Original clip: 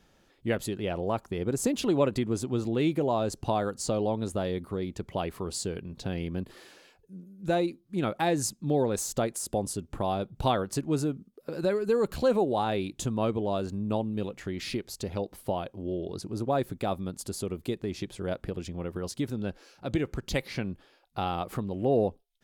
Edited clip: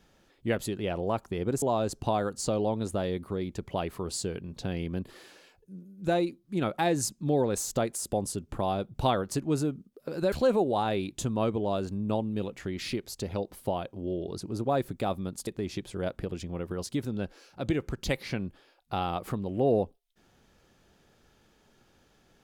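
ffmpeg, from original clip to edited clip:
-filter_complex "[0:a]asplit=4[a][b][c][d];[a]atrim=end=1.622[e];[b]atrim=start=3.028:end=11.732[f];[c]atrim=start=12.128:end=17.282[g];[d]atrim=start=17.718[h];[e][f]acrossfade=d=0.004:c1=hsin:c2=hsin[i];[i][g]acrossfade=d=0.004:c1=hsin:c2=hsin[j];[j][h]acrossfade=d=0.004:c1=hsin:c2=hsin"

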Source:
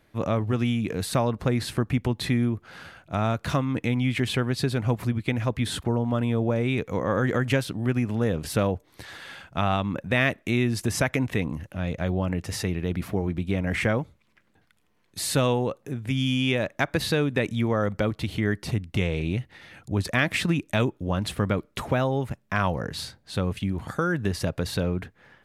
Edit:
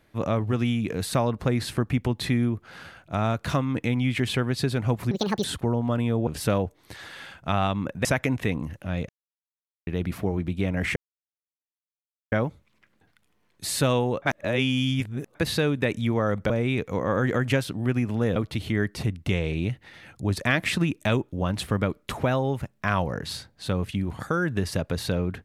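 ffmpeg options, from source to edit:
-filter_complex "[0:a]asplit=12[a][b][c][d][e][f][g][h][i][j][k][l];[a]atrim=end=5.114[m];[b]atrim=start=5.11:end=5.67,asetpts=PTS-STARTPTS,asetrate=74970,aresample=44100,atrim=end_sample=14527,asetpts=PTS-STARTPTS[n];[c]atrim=start=5.666:end=6.502[o];[d]atrim=start=8.358:end=10.142[p];[e]atrim=start=10.948:end=11.99,asetpts=PTS-STARTPTS,afade=t=out:st=1.038:d=0.004:c=hsin[q];[f]atrim=start=11.99:end=12.77,asetpts=PTS-STARTPTS,volume=0[r];[g]atrim=start=12.77:end=13.86,asetpts=PTS-STARTPTS,afade=t=in:d=0.004:c=hsin,afade=t=out:st=1.086:d=0.004:c=hsin,apad=pad_dur=1.36[s];[h]atrim=start=13.86:end=15.762,asetpts=PTS-STARTPTS,afade=t=in:d=0.004:c=hsin[t];[i]atrim=start=15.758:end=16.892,asetpts=PTS-STARTPTS,areverse[u];[j]atrim=start=16.888:end=18.042[v];[k]atrim=start=6.498:end=8.362[w];[l]atrim=start=18.038[x];[m][n]acrossfade=d=0.004:c1=hsin:c2=hsin[y];[y][o]acrossfade=d=0.004:c1=hsin:c2=hsin[z];[z][p]acrossfade=d=0.004:c1=hsin:c2=hsin[aa];[q][r][s][t]concat=n=4:v=0:a=1[ab];[aa][ab]acrossfade=d=0.004:c1=hsin:c2=hsin[ac];[ac][u]acrossfade=d=0.004:c1=hsin:c2=hsin[ad];[ad][v]acrossfade=d=0.004:c1=hsin:c2=hsin[ae];[ae][w]acrossfade=d=0.004:c1=hsin:c2=hsin[af];[af][x]acrossfade=d=0.004:c1=hsin:c2=hsin"

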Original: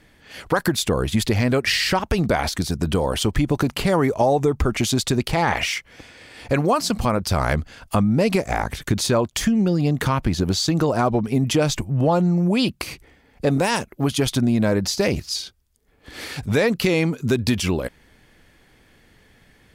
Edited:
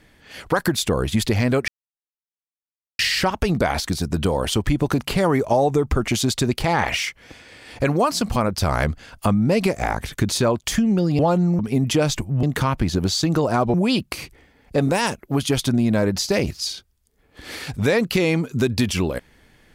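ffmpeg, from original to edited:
-filter_complex "[0:a]asplit=6[a][b][c][d][e][f];[a]atrim=end=1.68,asetpts=PTS-STARTPTS,afade=t=out:st=1.676:d=0.004:c=hsin,apad=pad_dur=1.31[g];[b]atrim=start=1.68:end=9.882,asetpts=PTS-STARTPTS,afade=t=in:d=0.004:c=hsin[h];[c]atrim=start=12.028:end=12.432[i];[d]atrim=start=11.188:end=12.032[j];[e]atrim=start=9.878:end=11.192[k];[f]atrim=start=12.428[l];[g][h]concat=n=2:v=0:a=1[m];[m][i]acrossfade=d=0.004:c1=hsin:c2=hsin[n];[n][j]acrossfade=d=0.004:c1=hsin:c2=hsin[o];[o][k]acrossfade=d=0.004:c1=hsin:c2=hsin[p];[p][l]acrossfade=d=0.004:c1=hsin:c2=hsin"

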